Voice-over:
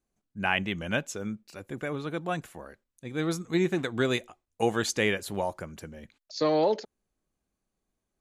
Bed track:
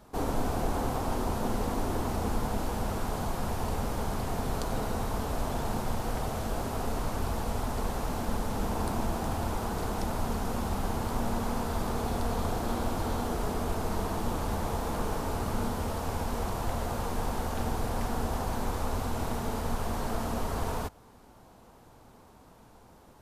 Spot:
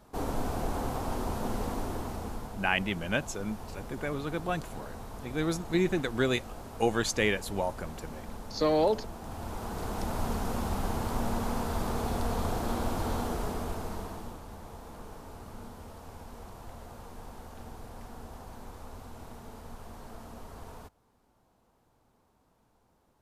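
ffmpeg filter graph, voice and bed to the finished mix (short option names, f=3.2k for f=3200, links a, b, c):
-filter_complex "[0:a]adelay=2200,volume=-1dB[a];[1:a]volume=8dB,afade=t=out:st=1.66:d=0.89:silence=0.375837,afade=t=in:st=9.2:d=1.04:silence=0.298538,afade=t=out:st=13.18:d=1.24:silence=0.211349[b];[a][b]amix=inputs=2:normalize=0"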